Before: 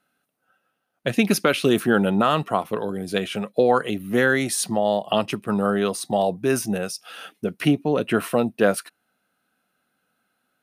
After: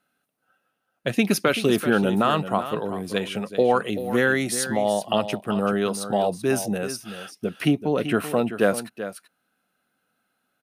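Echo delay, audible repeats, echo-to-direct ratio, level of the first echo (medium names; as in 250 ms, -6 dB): 384 ms, 1, -11.5 dB, -11.5 dB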